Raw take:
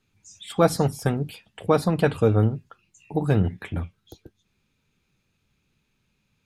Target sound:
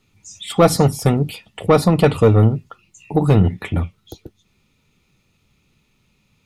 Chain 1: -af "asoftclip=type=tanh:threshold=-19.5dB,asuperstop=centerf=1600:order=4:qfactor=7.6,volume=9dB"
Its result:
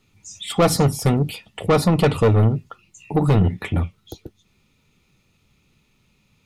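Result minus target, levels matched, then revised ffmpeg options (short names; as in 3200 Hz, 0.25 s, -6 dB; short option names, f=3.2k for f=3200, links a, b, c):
soft clip: distortion +7 dB
-af "asoftclip=type=tanh:threshold=-12.5dB,asuperstop=centerf=1600:order=4:qfactor=7.6,volume=9dB"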